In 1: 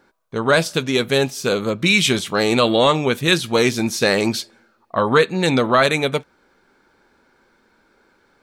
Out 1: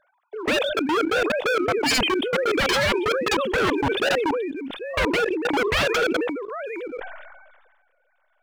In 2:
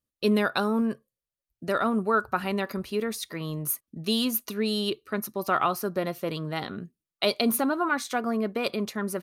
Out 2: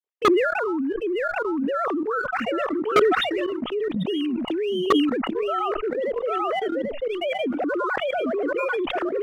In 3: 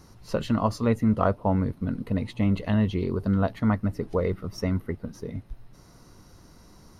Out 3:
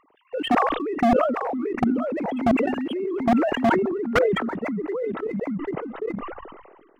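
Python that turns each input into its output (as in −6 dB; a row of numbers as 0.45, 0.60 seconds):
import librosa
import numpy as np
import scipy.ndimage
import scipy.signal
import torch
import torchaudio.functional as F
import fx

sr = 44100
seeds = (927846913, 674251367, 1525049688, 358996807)

p1 = fx.sine_speech(x, sr)
p2 = fx.backlash(p1, sr, play_db=-36.5)
p3 = p1 + (p2 * 10.0 ** (-8.0 / 20.0))
p4 = fx.peak_eq(p3, sr, hz=1800.0, db=-6.0, octaves=2.9)
p5 = p4 + fx.echo_single(p4, sr, ms=789, db=-7.0, dry=0)
p6 = fx.level_steps(p5, sr, step_db=18)
p7 = 10.0 ** (-20.5 / 20.0) * (np.abs((p6 / 10.0 ** (-20.5 / 20.0) + 3.0) % 4.0 - 2.0) - 1.0)
p8 = fx.sustainer(p7, sr, db_per_s=38.0)
y = p8 * 10.0 ** (-24 / 20.0) / np.sqrt(np.mean(np.square(p8)))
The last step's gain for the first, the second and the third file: +5.0, +11.5, +9.5 decibels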